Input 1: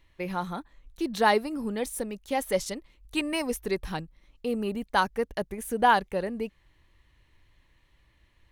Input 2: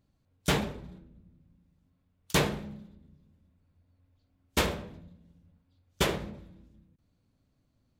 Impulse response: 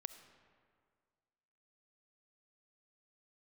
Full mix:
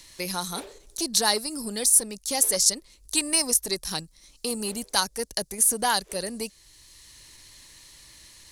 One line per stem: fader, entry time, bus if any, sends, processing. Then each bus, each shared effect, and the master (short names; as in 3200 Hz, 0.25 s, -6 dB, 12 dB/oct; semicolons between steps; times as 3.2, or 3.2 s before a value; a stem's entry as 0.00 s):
-2.5 dB, 0.00 s, no send, band shelf 6900 Hz +15.5 dB; three-band squash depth 40%
-1.0 dB, 0.00 s, no send, resonant low shelf 280 Hz -13 dB, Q 3; attack slew limiter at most 320 dB/s; auto duck -15 dB, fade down 1.25 s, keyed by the first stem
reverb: off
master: high shelf 3400 Hz +10 dB; core saturation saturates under 2000 Hz